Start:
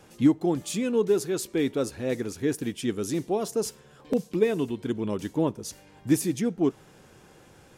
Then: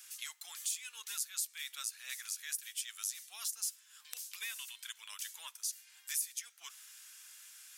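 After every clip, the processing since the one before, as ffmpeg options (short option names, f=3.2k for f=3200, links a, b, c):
-af "highpass=f=1.3k:w=0.5412,highpass=f=1.3k:w=1.3066,aderivative,acompressor=threshold=-49dB:ratio=2.5,volume=9.5dB"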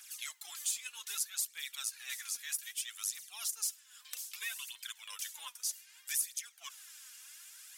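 -af "aphaser=in_gain=1:out_gain=1:delay=4.3:decay=0.58:speed=0.63:type=triangular"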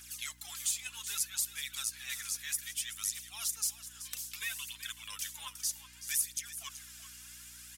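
-af "aecho=1:1:379:0.224,aeval=exprs='val(0)+0.000708*(sin(2*PI*60*n/s)+sin(2*PI*2*60*n/s)/2+sin(2*PI*3*60*n/s)/3+sin(2*PI*4*60*n/s)/4+sin(2*PI*5*60*n/s)/5)':c=same,volume=2dB"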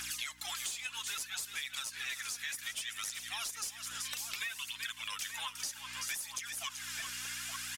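-filter_complex "[0:a]asplit=2[a][b];[b]highpass=f=720:p=1,volume=15dB,asoftclip=type=tanh:threshold=-14.5dB[c];[a][c]amix=inputs=2:normalize=0,lowpass=f=2.6k:p=1,volume=-6dB,asplit=2[d][e];[e]adelay=874.6,volume=-10dB,highshelf=f=4k:g=-19.7[f];[d][f]amix=inputs=2:normalize=0,acompressor=threshold=-45dB:ratio=10,volume=8.5dB"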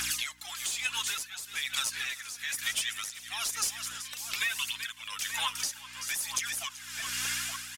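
-af "tremolo=f=1.1:d=0.71,volume=9dB"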